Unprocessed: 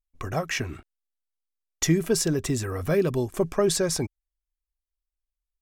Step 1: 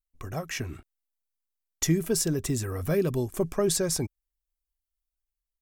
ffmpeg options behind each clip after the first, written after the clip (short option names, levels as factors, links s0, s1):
-af "highshelf=f=7800:g=11,dynaudnorm=f=240:g=5:m=1.58,lowshelf=f=360:g=5,volume=0.355"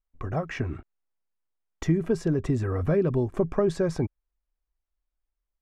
-af "acompressor=threshold=0.0447:ratio=2,lowpass=1500,crystalizer=i=1.5:c=0,volume=1.88"